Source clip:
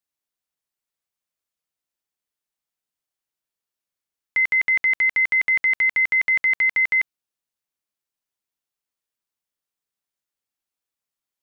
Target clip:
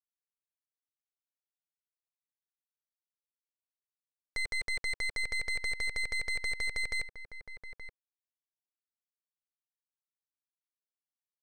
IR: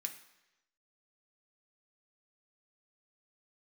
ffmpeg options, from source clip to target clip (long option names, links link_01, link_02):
-filter_complex "[0:a]lowpass=1300,equalizer=frequency=460:width_type=o:width=0.57:gain=11.5,aeval=exprs='0.119*(cos(1*acos(clip(val(0)/0.119,-1,1)))-cos(1*PI/2))+0.0299*(cos(6*acos(clip(val(0)/0.119,-1,1)))-cos(6*PI/2))+0.00335*(cos(7*acos(clip(val(0)/0.119,-1,1)))-cos(7*PI/2))':channel_layout=same,acrusher=bits=7:mix=0:aa=0.5,asplit=2[link_01][link_02];[link_02]adelay=874.6,volume=-9dB,highshelf=frequency=4000:gain=-19.7[link_03];[link_01][link_03]amix=inputs=2:normalize=0,volume=-8dB"